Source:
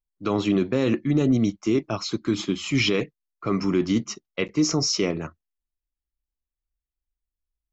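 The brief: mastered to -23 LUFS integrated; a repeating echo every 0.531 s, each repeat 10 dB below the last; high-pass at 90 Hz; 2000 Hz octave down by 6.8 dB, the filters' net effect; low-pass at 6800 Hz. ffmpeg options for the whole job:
-af "highpass=90,lowpass=6.8k,equalizer=f=2k:t=o:g=-8.5,aecho=1:1:531|1062|1593|2124:0.316|0.101|0.0324|0.0104,volume=2dB"

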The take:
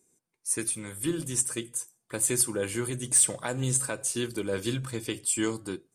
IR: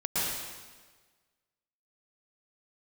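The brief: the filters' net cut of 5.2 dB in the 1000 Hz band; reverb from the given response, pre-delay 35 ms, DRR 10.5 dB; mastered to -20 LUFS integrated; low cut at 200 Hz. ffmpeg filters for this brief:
-filter_complex "[0:a]highpass=200,equalizer=f=1k:t=o:g=-7,asplit=2[a][b];[1:a]atrim=start_sample=2205,adelay=35[c];[b][c]afir=irnorm=-1:irlink=0,volume=-20dB[d];[a][d]amix=inputs=2:normalize=0,volume=8dB"

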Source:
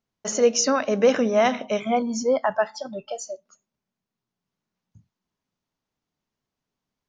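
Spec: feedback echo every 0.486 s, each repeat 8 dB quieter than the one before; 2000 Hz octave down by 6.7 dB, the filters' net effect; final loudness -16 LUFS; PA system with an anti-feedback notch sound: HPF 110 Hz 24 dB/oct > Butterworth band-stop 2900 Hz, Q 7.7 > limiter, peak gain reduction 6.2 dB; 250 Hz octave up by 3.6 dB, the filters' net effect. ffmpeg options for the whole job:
-af "highpass=f=110:w=0.5412,highpass=f=110:w=1.3066,asuperstop=centerf=2900:order=8:qfactor=7.7,equalizer=f=250:t=o:g=4,equalizer=f=2k:t=o:g=-8.5,aecho=1:1:486|972|1458|1944|2430:0.398|0.159|0.0637|0.0255|0.0102,volume=7.5dB,alimiter=limit=-5dB:level=0:latency=1"

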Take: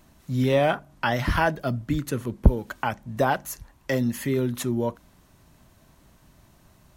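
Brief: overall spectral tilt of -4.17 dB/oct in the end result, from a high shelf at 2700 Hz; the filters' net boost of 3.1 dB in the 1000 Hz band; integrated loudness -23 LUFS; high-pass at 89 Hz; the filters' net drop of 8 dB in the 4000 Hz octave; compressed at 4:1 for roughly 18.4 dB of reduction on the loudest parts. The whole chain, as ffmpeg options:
-af "highpass=89,equalizer=f=1k:t=o:g=5,highshelf=f=2.7k:g=-5,equalizer=f=4k:t=o:g=-7.5,acompressor=threshold=-37dB:ratio=4,volume=16.5dB"

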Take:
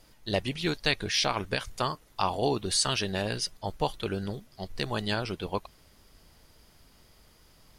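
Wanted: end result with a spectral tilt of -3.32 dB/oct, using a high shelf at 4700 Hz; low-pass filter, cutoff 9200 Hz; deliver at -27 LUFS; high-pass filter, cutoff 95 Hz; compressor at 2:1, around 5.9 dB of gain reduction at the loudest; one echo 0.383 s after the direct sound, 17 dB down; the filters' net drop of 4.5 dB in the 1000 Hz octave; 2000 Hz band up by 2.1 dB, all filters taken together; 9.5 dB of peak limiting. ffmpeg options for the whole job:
-af "highpass=95,lowpass=9.2k,equalizer=f=1k:t=o:g=-7,equalizer=f=2k:t=o:g=3.5,highshelf=f=4.7k:g=5.5,acompressor=threshold=-30dB:ratio=2,alimiter=limit=-21.5dB:level=0:latency=1,aecho=1:1:383:0.141,volume=8dB"

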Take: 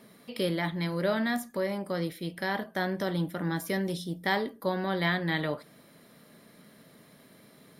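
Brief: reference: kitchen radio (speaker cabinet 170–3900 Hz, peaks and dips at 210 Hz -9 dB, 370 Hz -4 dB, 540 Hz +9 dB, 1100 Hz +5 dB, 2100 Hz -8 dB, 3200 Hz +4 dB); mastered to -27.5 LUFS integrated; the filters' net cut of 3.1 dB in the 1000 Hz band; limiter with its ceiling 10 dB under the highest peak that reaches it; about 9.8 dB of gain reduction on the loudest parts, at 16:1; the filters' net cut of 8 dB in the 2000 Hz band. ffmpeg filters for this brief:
-af "equalizer=f=1k:t=o:g=-6,equalizer=f=2k:t=o:g=-4.5,acompressor=threshold=-35dB:ratio=16,alimiter=level_in=9.5dB:limit=-24dB:level=0:latency=1,volume=-9.5dB,highpass=170,equalizer=f=210:t=q:w=4:g=-9,equalizer=f=370:t=q:w=4:g=-4,equalizer=f=540:t=q:w=4:g=9,equalizer=f=1.1k:t=q:w=4:g=5,equalizer=f=2.1k:t=q:w=4:g=-8,equalizer=f=3.2k:t=q:w=4:g=4,lowpass=f=3.9k:w=0.5412,lowpass=f=3.9k:w=1.3066,volume=16dB"

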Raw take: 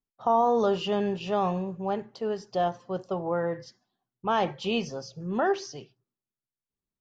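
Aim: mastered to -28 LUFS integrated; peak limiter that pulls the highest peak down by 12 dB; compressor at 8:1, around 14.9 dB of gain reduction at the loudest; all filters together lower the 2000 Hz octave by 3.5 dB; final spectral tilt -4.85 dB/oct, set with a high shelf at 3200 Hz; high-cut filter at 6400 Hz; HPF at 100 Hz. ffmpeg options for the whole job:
-af "highpass=100,lowpass=6.4k,equalizer=f=2k:t=o:g=-6.5,highshelf=f=3.2k:g=4,acompressor=threshold=-35dB:ratio=8,volume=14dB,alimiter=limit=-18dB:level=0:latency=1"

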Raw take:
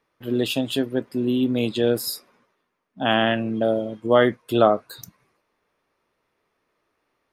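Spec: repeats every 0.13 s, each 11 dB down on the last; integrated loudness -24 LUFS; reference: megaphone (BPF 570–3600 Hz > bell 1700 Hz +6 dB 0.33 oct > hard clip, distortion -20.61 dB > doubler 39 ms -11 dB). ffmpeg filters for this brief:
-filter_complex "[0:a]highpass=570,lowpass=3.6k,equalizer=f=1.7k:t=o:w=0.33:g=6,aecho=1:1:130|260|390:0.282|0.0789|0.0221,asoftclip=type=hard:threshold=-11dB,asplit=2[a][b];[b]adelay=39,volume=-11dB[c];[a][c]amix=inputs=2:normalize=0,volume=1dB"

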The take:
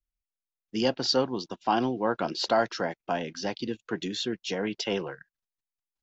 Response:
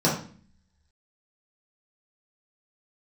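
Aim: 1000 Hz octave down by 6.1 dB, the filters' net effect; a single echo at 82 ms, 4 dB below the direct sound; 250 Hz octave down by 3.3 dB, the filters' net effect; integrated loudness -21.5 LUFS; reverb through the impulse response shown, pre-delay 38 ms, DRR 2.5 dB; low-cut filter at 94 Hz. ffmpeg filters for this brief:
-filter_complex "[0:a]highpass=94,equalizer=f=250:t=o:g=-3.5,equalizer=f=1k:t=o:g=-9,aecho=1:1:82:0.631,asplit=2[a][b];[1:a]atrim=start_sample=2205,adelay=38[c];[b][c]afir=irnorm=-1:irlink=0,volume=-18dB[d];[a][d]amix=inputs=2:normalize=0,volume=5dB"

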